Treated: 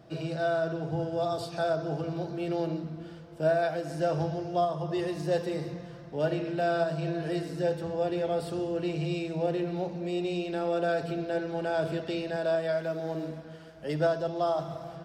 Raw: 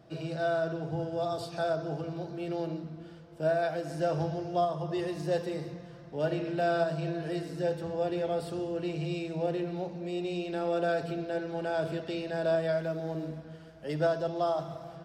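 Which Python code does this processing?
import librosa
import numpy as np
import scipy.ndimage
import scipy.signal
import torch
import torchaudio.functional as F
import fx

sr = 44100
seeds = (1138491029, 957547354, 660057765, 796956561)

p1 = fx.low_shelf(x, sr, hz=200.0, db=-8.0, at=(12.36, 13.78))
p2 = fx.rider(p1, sr, range_db=4, speed_s=0.5)
p3 = p1 + F.gain(torch.from_numpy(p2), -0.5).numpy()
y = F.gain(torch.from_numpy(p3), -4.0).numpy()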